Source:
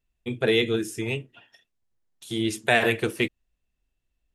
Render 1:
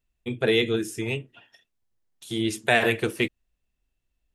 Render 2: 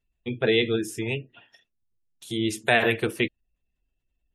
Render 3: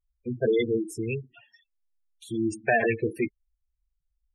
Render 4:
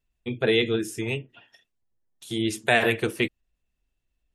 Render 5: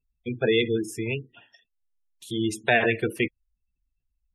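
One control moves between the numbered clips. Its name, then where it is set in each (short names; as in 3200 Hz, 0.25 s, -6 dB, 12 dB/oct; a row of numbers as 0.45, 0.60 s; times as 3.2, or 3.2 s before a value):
spectral gate, under each frame's peak: -60, -35, -10, -45, -20 dB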